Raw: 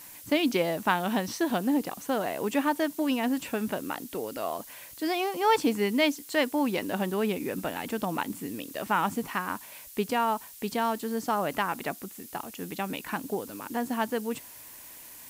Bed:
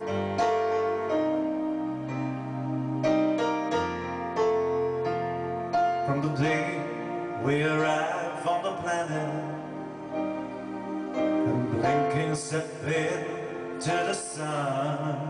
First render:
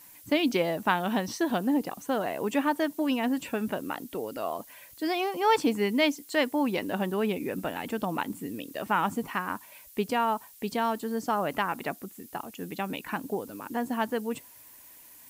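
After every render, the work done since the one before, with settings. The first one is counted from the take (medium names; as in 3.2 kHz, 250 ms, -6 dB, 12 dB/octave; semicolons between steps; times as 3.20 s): noise reduction 7 dB, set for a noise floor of -47 dBFS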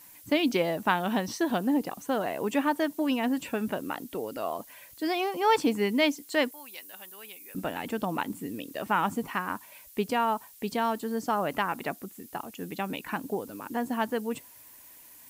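6.51–7.55 s: differentiator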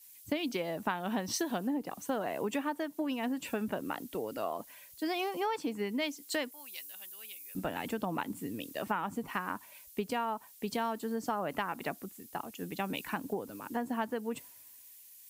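compression 12:1, threshold -30 dBFS, peak gain reduction 13.5 dB; three bands expanded up and down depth 70%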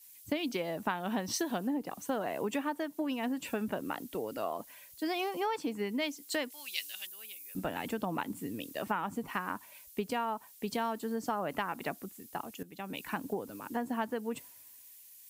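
6.50–7.07 s: frequency weighting D; 12.63–13.16 s: fade in, from -16 dB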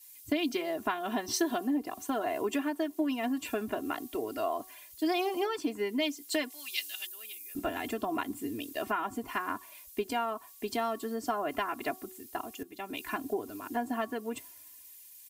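comb 2.9 ms, depth 87%; de-hum 374.4 Hz, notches 3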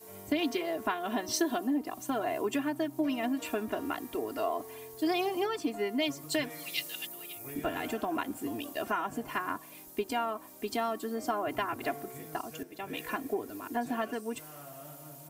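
add bed -20.5 dB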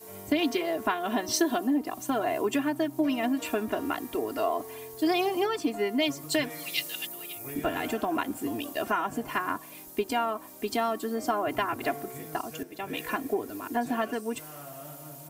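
trim +4 dB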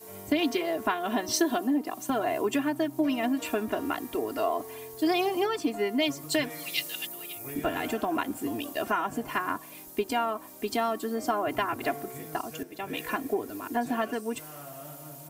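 1.58–2.10 s: high-pass 150 Hz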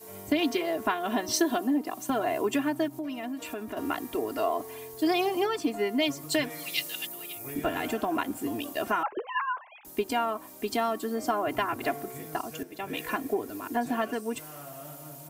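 2.88–3.77 s: compression 2:1, threshold -38 dBFS; 9.03–9.85 s: formants replaced by sine waves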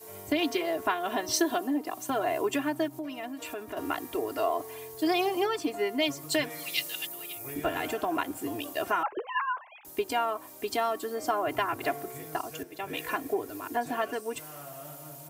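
high-pass 48 Hz; peaking EQ 220 Hz -11.5 dB 0.41 oct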